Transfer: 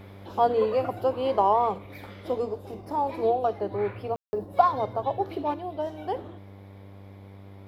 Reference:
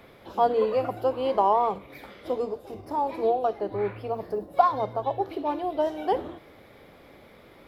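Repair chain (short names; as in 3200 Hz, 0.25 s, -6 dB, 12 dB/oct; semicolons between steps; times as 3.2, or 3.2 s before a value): de-hum 98.2 Hz, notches 11; room tone fill 4.16–4.33; gain 0 dB, from 5.54 s +5.5 dB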